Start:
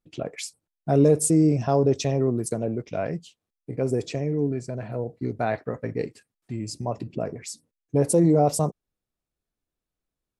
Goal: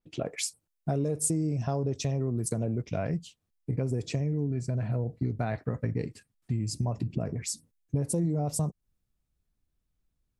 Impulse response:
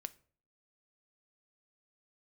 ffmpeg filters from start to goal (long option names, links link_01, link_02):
-af "asubboost=boost=3.5:cutoff=210,acompressor=threshold=-26dB:ratio=6,adynamicequalizer=threshold=0.00447:dfrequency=5700:dqfactor=0.7:tfrequency=5700:tqfactor=0.7:attack=5:release=100:ratio=0.375:range=2.5:mode=boostabove:tftype=highshelf"